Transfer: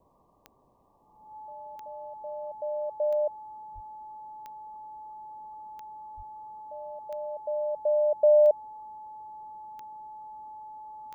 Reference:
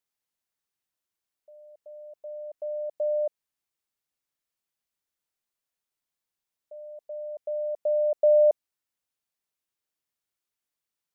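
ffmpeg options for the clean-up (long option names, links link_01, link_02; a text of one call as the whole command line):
ffmpeg -i in.wav -filter_complex "[0:a]adeclick=threshold=4,bandreject=frequency=860:width=30,asplit=3[link_01][link_02][link_03];[link_01]afade=type=out:start_time=3.74:duration=0.02[link_04];[link_02]highpass=frequency=140:width=0.5412,highpass=frequency=140:width=1.3066,afade=type=in:start_time=3.74:duration=0.02,afade=type=out:start_time=3.86:duration=0.02[link_05];[link_03]afade=type=in:start_time=3.86:duration=0.02[link_06];[link_04][link_05][link_06]amix=inputs=3:normalize=0,asplit=3[link_07][link_08][link_09];[link_07]afade=type=out:start_time=6.16:duration=0.02[link_10];[link_08]highpass=frequency=140:width=0.5412,highpass=frequency=140:width=1.3066,afade=type=in:start_time=6.16:duration=0.02,afade=type=out:start_time=6.28:duration=0.02[link_11];[link_09]afade=type=in:start_time=6.28:duration=0.02[link_12];[link_10][link_11][link_12]amix=inputs=3:normalize=0,afwtdn=0.0022" out.wav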